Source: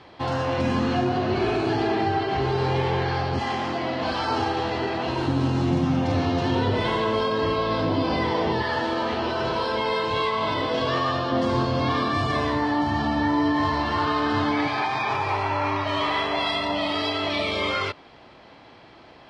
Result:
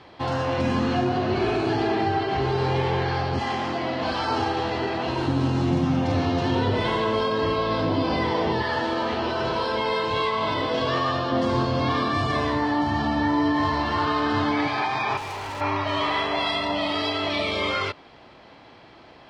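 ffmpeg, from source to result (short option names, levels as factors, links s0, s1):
-filter_complex "[0:a]asettb=1/sr,asplit=3[s0][s1][s2];[s0]atrim=end=15.174[s3];[s1]atrim=start=15.17:end=15.61,asetpts=PTS-STARTPTS,afade=t=in:d=0.004:c=qsin,afade=t=out:st=0.436:d=0.004:c=qsin,volume=35.5,asoftclip=hard,volume=0.0282[s4];[s2]atrim=start=15.606[s5];[s3][s4]acrossfade=d=0.004:c1=hsin:c2=qsin[s6];[s6][s5]acrossfade=d=0.004:c1=qsin:c2=hsin"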